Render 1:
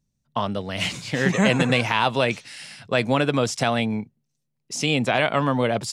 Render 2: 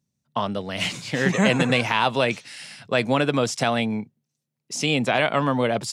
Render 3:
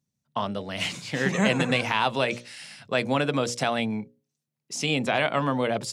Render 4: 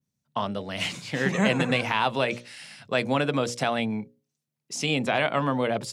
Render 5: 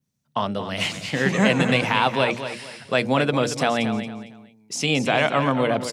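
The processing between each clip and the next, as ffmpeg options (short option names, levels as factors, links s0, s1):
-af "highpass=110"
-af "bandreject=f=60:t=h:w=6,bandreject=f=120:t=h:w=6,bandreject=f=180:t=h:w=6,bandreject=f=240:t=h:w=6,bandreject=f=300:t=h:w=6,bandreject=f=360:t=h:w=6,bandreject=f=420:t=h:w=6,bandreject=f=480:t=h:w=6,bandreject=f=540:t=h:w=6,bandreject=f=600:t=h:w=6,volume=0.708"
-af "adynamicequalizer=threshold=0.00501:dfrequency=6700:dqfactor=0.79:tfrequency=6700:tqfactor=0.79:attack=5:release=100:ratio=0.375:range=2:mode=cutabove:tftype=bell"
-af "aecho=1:1:228|456|684:0.316|0.0917|0.0266,volume=1.58"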